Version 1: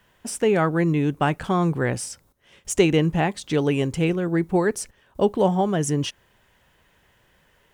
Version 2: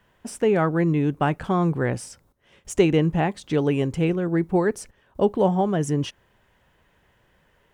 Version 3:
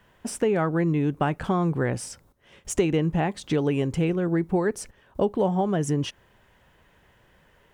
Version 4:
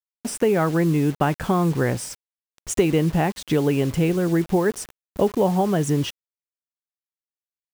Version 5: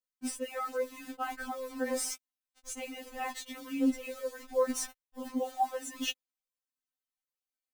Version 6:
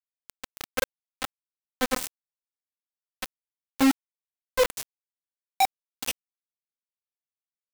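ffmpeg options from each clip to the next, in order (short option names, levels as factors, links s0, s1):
-af "highshelf=f=2500:g=-7.5"
-af "acompressor=threshold=0.0562:ratio=2.5,volume=1.41"
-af "acrusher=bits=6:mix=0:aa=0.000001,volume=1.5"
-af "areverse,acompressor=threshold=0.0447:ratio=10,areverse,aphaser=in_gain=1:out_gain=1:delay=1.9:decay=0.46:speed=1.3:type=triangular,afftfilt=real='re*3.46*eq(mod(b,12),0)':imag='im*3.46*eq(mod(b,12),0)':win_size=2048:overlap=0.75"
-af "flanger=delay=16:depth=6.4:speed=2.2,asoftclip=type=hard:threshold=0.0422,acrusher=bits=4:mix=0:aa=0.000001,volume=2.51"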